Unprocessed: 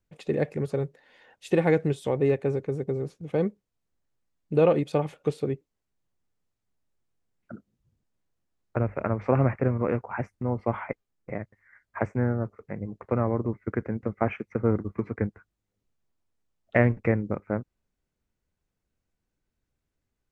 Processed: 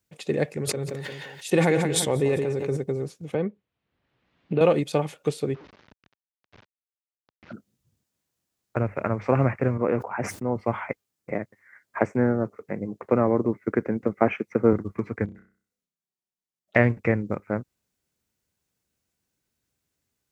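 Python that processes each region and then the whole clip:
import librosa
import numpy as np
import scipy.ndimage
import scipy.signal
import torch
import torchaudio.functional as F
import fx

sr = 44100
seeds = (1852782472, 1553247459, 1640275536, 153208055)

y = fx.chain(x, sr, fx.tremolo(hz=1.8, depth=0.48),
    fx.echo_feedback(ms=174, feedback_pct=32, wet_db=-12),
    fx.sustainer(db_per_s=31.0), at=(0.47, 2.77))
y = fx.chain(y, sr, fx.lowpass(hz=3100.0, slope=24),
    fx.band_squash(depth_pct=70), at=(3.34, 4.61))
y = fx.chain(y, sr, fx.delta_mod(bps=32000, step_db=-41.5),
    fx.lowpass(hz=1800.0, slope=12), at=(5.54, 7.53))
y = fx.chain(y, sr, fx.highpass(hz=380.0, slope=6),
    fx.tilt_shelf(db=6.0, hz=1100.0),
    fx.sustainer(db_per_s=110.0), at=(9.77, 10.56))
y = fx.chain(y, sr, fx.highpass(hz=180.0, slope=6),
    fx.peak_eq(hz=320.0, db=6.5, octaves=2.6), at=(11.31, 14.73))
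y = fx.chain(y, sr, fx.level_steps(step_db=18),
    fx.env_flanger(rest_ms=5.5, full_db=-38.5),
    fx.room_flutter(wall_m=5.4, rt60_s=0.43), at=(15.25, 16.76))
y = scipy.signal.sosfilt(scipy.signal.butter(2, 79.0, 'highpass', fs=sr, output='sos'), y)
y = fx.high_shelf(y, sr, hz=3100.0, db=11.0)
y = F.gain(torch.from_numpy(y), 1.0).numpy()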